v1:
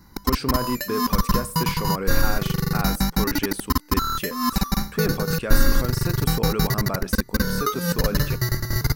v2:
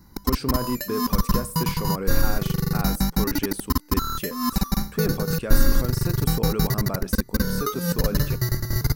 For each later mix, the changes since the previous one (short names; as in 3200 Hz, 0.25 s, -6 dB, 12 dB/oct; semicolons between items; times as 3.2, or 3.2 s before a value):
master: add bell 2000 Hz -5 dB 2.9 oct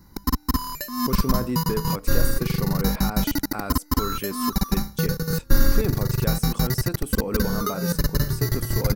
speech: entry +0.80 s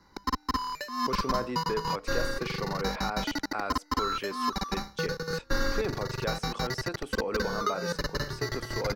master: add three-band isolator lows -14 dB, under 380 Hz, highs -24 dB, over 5600 Hz